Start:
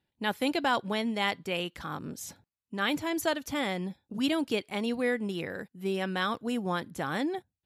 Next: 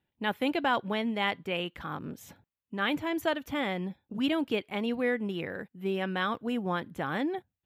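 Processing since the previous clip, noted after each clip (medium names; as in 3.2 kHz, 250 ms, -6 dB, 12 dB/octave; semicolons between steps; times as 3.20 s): high-order bell 6.9 kHz -11.5 dB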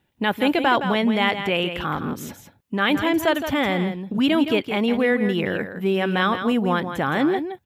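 in parallel at +1 dB: peak limiter -27 dBFS, peak gain reduction 11.5 dB; on the sum: delay 166 ms -9 dB; trim +5.5 dB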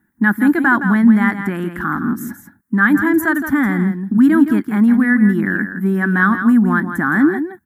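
FFT filter 140 Hz 0 dB, 210 Hz +13 dB, 330 Hz +8 dB, 490 Hz -15 dB, 800 Hz -2 dB, 1.7 kHz +13 dB, 2.7 kHz -20 dB, 10 kHz +8 dB; trim -1 dB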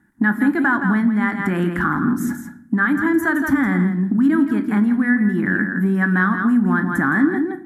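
compression 4:1, threshold -20 dBFS, peak gain reduction 12 dB; low-pass 9.8 kHz 12 dB/octave; simulated room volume 130 m³, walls mixed, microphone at 0.3 m; trim +4 dB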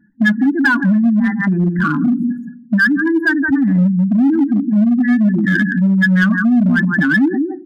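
spectral contrast enhancement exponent 2.5; comb 1.2 ms, depth 40%; in parallel at -8 dB: wavefolder -15 dBFS; on the sum: trim +2 dB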